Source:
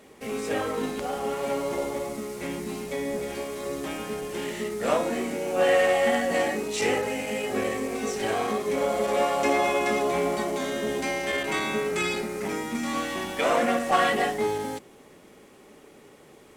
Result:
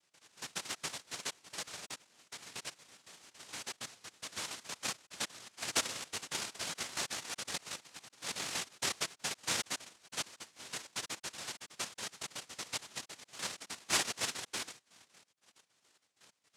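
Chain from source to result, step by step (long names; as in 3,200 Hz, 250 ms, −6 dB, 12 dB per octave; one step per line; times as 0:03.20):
time-frequency cells dropped at random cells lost 79%
0:04.26–0:05.27: comb filter 0.8 ms, depth 87%
cochlear-implant simulation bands 1
level −8.5 dB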